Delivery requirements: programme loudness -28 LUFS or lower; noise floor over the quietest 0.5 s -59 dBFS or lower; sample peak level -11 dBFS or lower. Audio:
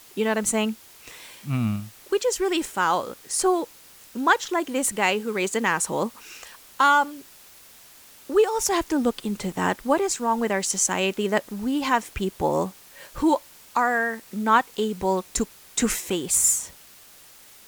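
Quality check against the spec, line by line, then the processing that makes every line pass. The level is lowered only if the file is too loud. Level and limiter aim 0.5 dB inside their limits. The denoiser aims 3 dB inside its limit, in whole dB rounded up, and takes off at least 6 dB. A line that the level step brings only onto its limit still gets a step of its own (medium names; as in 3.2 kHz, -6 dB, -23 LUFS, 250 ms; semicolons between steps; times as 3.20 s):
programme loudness -24.0 LUFS: fail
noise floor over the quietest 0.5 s -50 dBFS: fail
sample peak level -6.5 dBFS: fail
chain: noise reduction 8 dB, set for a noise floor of -50 dBFS; trim -4.5 dB; peak limiter -11.5 dBFS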